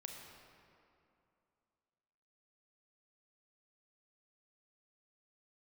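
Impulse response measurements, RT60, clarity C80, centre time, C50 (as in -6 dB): 2.7 s, 3.5 dB, 86 ms, 2.5 dB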